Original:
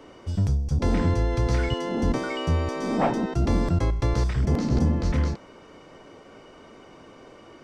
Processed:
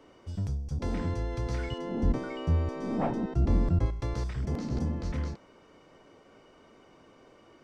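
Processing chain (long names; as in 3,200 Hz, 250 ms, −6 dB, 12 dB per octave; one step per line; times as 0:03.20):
0:01.78–0:03.86: spectral tilt −2 dB per octave
level −9 dB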